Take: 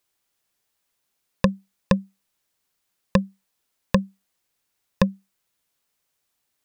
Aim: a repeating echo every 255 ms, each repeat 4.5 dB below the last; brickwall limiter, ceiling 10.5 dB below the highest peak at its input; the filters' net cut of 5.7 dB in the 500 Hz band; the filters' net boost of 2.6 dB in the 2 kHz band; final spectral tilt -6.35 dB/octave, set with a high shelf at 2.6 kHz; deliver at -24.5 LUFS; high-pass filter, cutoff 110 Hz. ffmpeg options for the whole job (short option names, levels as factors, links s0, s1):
-af "highpass=110,equalizer=f=500:t=o:g=-6,equalizer=f=2000:t=o:g=6,highshelf=f=2600:g=-6,alimiter=limit=0.2:level=0:latency=1,aecho=1:1:255|510|765|1020|1275|1530|1785|2040|2295:0.596|0.357|0.214|0.129|0.0772|0.0463|0.0278|0.0167|0.01,volume=3.16"